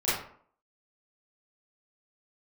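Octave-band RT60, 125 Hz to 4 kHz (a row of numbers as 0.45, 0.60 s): 0.50, 0.60, 0.55, 0.55, 0.45, 0.35 s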